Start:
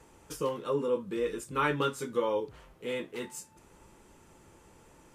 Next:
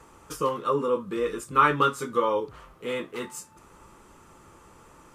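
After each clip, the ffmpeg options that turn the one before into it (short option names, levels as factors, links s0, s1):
-af "equalizer=f=1200:w=3.4:g=11,volume=1.5"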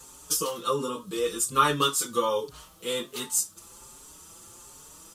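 -filter_complex "[0:a]aexciter=amount=6.9:drive=3.6:freq=3100,asplit=2[s0][s1];[s1]adelay=5.3,afreqshift=1.3[s2];[s0][s2]amix=inputs=2:normalize=1"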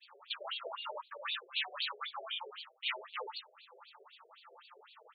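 -af "afftfilt=real='re*lt(hypot(re,im),0.0562)':imag='im*lt(hypot(re,im),0.0562)':win_size=1024:overlap=0.75,agate=range=0.0224:threshold=0.00631:ratio=3:detection=peak,afftfilt=real='re*between(b*sr/1024,490*pow(3300/490,0.5+0.5*sin(2*PI*3.9*pts/sr))/1.41,490*pow(3300/490,0.5+0.5*sin(2*PI*3.9*pts/sr))*1.41)':imag='im*between(b*sr/1024,490*pow(3300/490,0.5+0.5*sin(2*PI*3.9*pts/sr))/1.41,490*pow(3300/490,0.5+0.5*sin(2*PI*3.9*pts/sr))*1.41)':win_size=1024:overlap=0.75,volume=2.66"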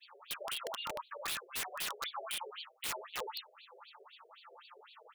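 -af "aeval=exprs='(mod(44.7*val(0)+1,2)-1)/44.7':c=same,volume=1.19"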